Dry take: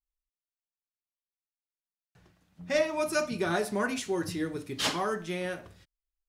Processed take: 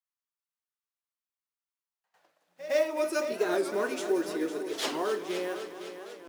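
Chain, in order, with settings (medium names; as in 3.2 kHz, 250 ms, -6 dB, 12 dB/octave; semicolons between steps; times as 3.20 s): block-companded coder 5-bit; pre-echo 110 ms -16 dB; high-pass sweep 1.1 kHz -> 370 Hz, 1.65–2.97 s; on a send: multi-head delay 253 ms, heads first and second, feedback 58%, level -13 dB; on the sum: warped record 45 rpm, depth 160 cents; trim -4 dB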